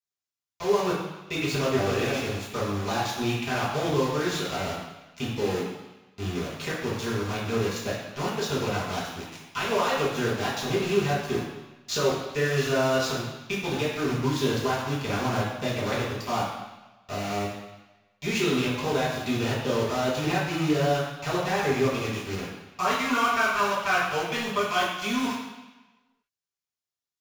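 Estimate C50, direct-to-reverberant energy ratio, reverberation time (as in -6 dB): 1.5 dB, -8.5 dB, 1.1 s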